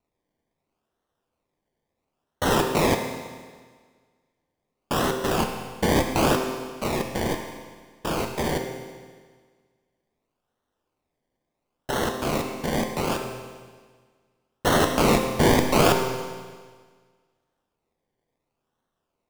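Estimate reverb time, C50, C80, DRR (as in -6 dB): 1.6 s, 5.0 dB, 6.5 dB, 3.0 dB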